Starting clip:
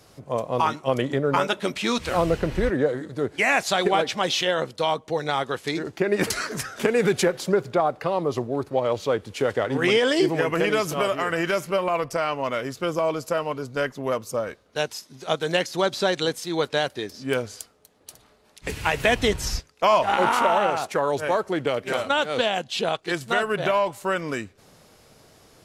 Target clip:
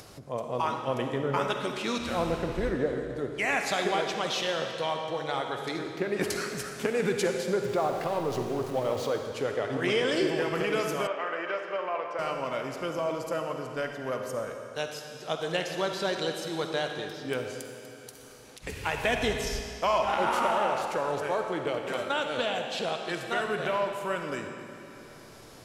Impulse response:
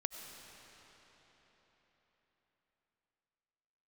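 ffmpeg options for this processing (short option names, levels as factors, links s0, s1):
-filter_complex "[0:a]asettb=1/sr,asplit=3[s0][s1][s2];[s0]atrim=end=7.644[s3];[s1]atrim=start=7.64:end=9.07,asetpts=PTS-STARTPTS,afade=t=in:d=0.004:c=qsin,afade=t=out:st=1.426:d=0.004:c=qsin,aeval=exprs='val(0)+0.5*0.0251*sgn(val(0))':c=same[s4];[s2]atrim=start=9.066[s5];[s3][s4]acrossfade=d=0.004:c1=hsin:c2=qsin[s6];[s6][s5]acrossfade=d=0.004:c1=qsin:c2=hsin[s7];[1:a]atrim=start_sample=2205,asetrate=88200,aresample=44100[s8];[s7][s8]afir=irnorm=-1:irlink=0,acompressor=mode=upward:threshold=0.0112:ratio=2.5,asettb=1/sr,asplit=3[s9][s10][s11];[s9]atrim=end=11.074[s12];[s10]atrim=start=11.07:end=12.19,asetpts=PTS-STARTPTS,afade=t=in:d=0.004:c=qsin,afade=t=out:st=1.116:d=0.004:c=qsin,highpass=450,lowpass=2600[s13];[s11]atrim=start=12.186[s14];[s12][s13]acrossfade=d=0.004:c1=hsin:c2=qsin[s15];[s15][s14]acrossfade=d=0.004:c1=qsin:c2=hsin"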